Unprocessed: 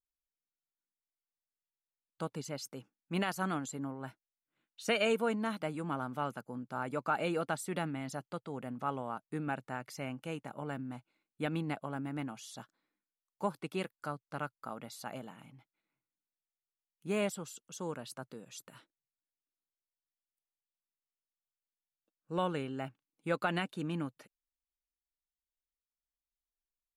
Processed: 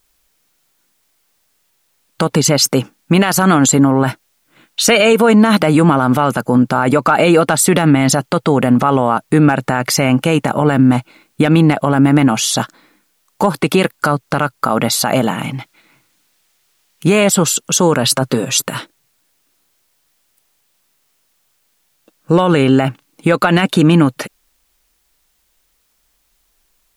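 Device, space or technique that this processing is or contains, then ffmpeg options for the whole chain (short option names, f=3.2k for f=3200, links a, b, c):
loud club master: -filter_complex "[0:a]asettb=1/sr,asplit=3[a][b][c];[a]atrim=end=15.444[d];[b]atrim=start=15.44:end=17.24,asetpts=PTS-STARTPTS,afade=t=in:d=0.004:c=qsin,afade=t=out:st=1.796:d=0.004:c=qsin,equalizer=f=3.3k:w=0.4:g=4[e];[c]atrim=start=17.236[f];[d][e]acrossfade=d=0.004:c1=hsin:c2=qsin[g];[g][f]acrossfade=d=0.004:c1=qsin:c2=hsin,asettb=1/sr,asplit=3[h][i][j];[h]atrim=end=18.034[k];[i]atrim=start=18.03:end=18.62,asetpts=PTS-STARTPTS,afade=t=in:d=0.004:c=qsin,afade=t=out:st=0.586:d=0.004:c=qsin,aecho=1:1:7.4:0.57,atrim=end_sample=26019[l];[j]atrim=start=18.616[m];[k][l]acrossfade=d=0.004:c1=hsin:c2=qsin[n];[n][m]acrossfade=d=0.004:c1=qsin:c2=hsin,acompressor=threshold=-35dB:ratio=2.5,asoftclip=type=hard:threshold=-25.5dB,alimiter=level_in=34dB:limit=-1dB:release=50:level=0:latency=1,volume=-1dB"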